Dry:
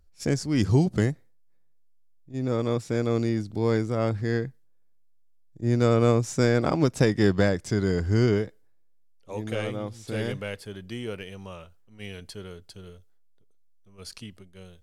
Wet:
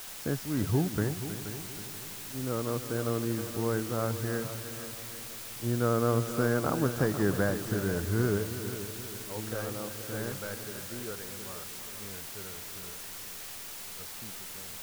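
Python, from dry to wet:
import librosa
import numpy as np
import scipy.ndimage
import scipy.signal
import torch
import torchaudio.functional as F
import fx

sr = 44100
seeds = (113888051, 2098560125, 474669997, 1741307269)

y = fx.high_shelf_res(x, sr, hz=1900.0, db=-8.5, q=3.0)
y = fx.quant_dither(y, sr, seeds[0], bits=6, dither='triangular')
y = fx.echo_heads(y, sr, ms=159, heads='second and third', feedback_pct=49, wet_db=-12)
y = y * 10.0 ** (-7.0 / 20.0)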